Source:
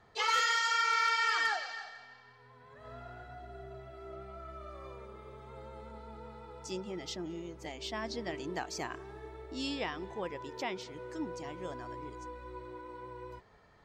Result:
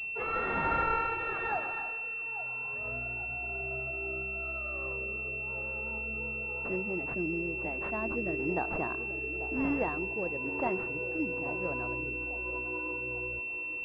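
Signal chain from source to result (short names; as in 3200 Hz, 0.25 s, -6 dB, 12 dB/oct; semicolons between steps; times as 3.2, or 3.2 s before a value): rotary speaker horn 1 Hz; band-limited delay 0.839 s, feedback 45%, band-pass 480 Hz, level -11 dB; pulse-width modulation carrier 2700 Hz; gain +7 dB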